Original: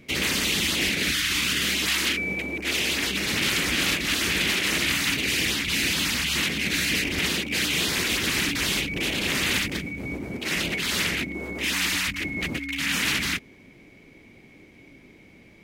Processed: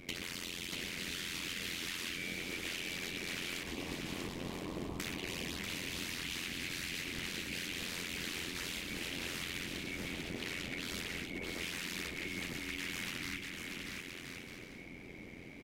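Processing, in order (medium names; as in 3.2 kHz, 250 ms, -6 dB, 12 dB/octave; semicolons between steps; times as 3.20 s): 3.63–5.00 s: Chebyshev low-pass 1.1 kHz, order 6; compression 16:1, threshold -38 dBFS, peak gain reduction 18 dB; AM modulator 87 Hz, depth 95%; bouncing-ball echo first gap 640 ms, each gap 0.6×, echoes 5; 10.11–10.86 s: loudspeaker Doppler distortion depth 0.22 ms; trim +2.5 dB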